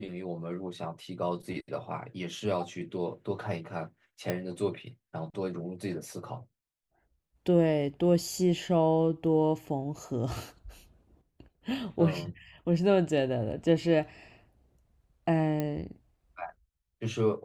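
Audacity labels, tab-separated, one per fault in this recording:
4.300000	4.300000	pop -16 dBFS
15.600000	15.600000	pop -18 dBFS

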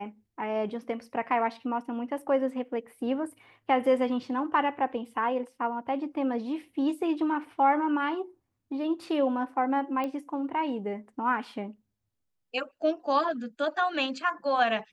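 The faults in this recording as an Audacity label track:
10.040000	10.040000	pop -21 dBFS

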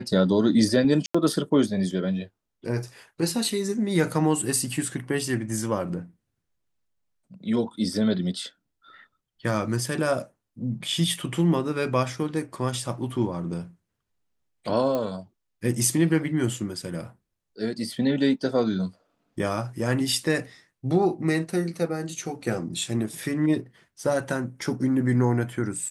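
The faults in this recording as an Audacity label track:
1.060000	1.150000	gap 85 ms
14.950000	14.950000	pop -15 dBFS

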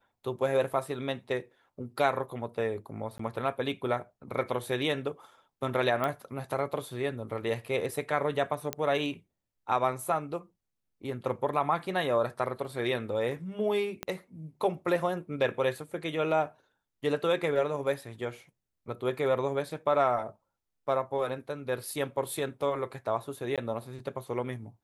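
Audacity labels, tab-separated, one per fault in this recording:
3.180000	3.190000	gap 14 ms
6.040000	6.040000	pop -17 dBFS
8.730000	8.730000	pop -13 dBFS
14.030000	14.030000	pop -17 dBFS
23.560000	23.580000	gap 17 ms

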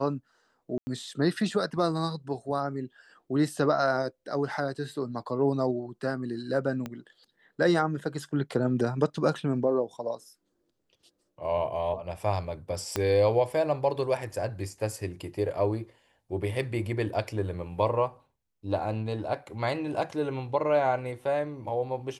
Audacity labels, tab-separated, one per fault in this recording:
0.780000	0.870000	gap 90 ms
6.860000	6.860000	pop -21 dBFS
12.960000	12.960000	pop -12 dBFS

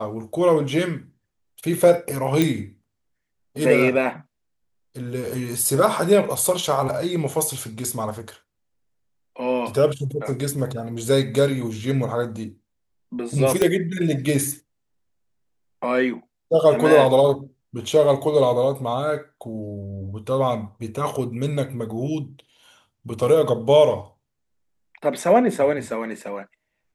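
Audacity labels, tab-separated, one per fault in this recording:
2.420000	2.420000	pop
13.620000	13.620000	pop -6 dBFS

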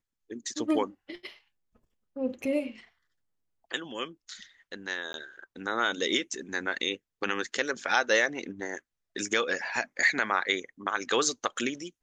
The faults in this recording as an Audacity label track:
5.130000	5.140000	gap

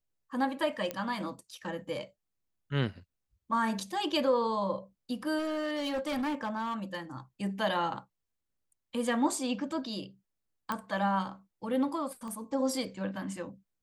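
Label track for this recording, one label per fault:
0.910000	0.910000	pop -19 dBFS
5.380000	6.960000	clipped -29 dBFS
10.720000	10.720000	pop -18 dBFS
12.280000	12.280000	pop -31 dBFS

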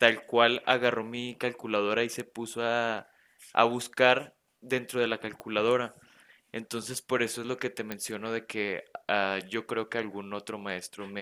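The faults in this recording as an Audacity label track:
5.400000	5.400000	pop -24 dBFS
7.920000	7.920000	pop -18 dBFS

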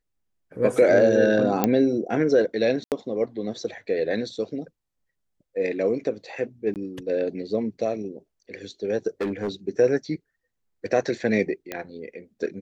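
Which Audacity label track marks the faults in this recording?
1.640000	1.640000	pop -6 dBFS
2.840000	2.920000	gap 78 ms
6.740000	6.760000	gap 18 ms
9.210000	9.490000	clipped -22 dBFS
11.720000	11.720000	pop -15 dBFS

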